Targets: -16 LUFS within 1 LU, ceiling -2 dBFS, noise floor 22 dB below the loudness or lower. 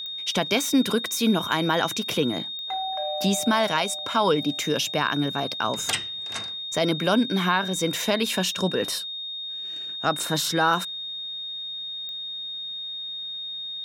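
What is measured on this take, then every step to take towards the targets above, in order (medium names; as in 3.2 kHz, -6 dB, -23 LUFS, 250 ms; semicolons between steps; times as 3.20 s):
clicks found 5; steady tone 3.7 kHz; tone level -31 dBFS; loudness -25.0 LUFS; peak level -8.0 dBFS; loudness target -16.0 LUFS
-> de-click; band-stop 3.7 kHz, Q 30; trim +9 dB; peak limiter -2 dBFS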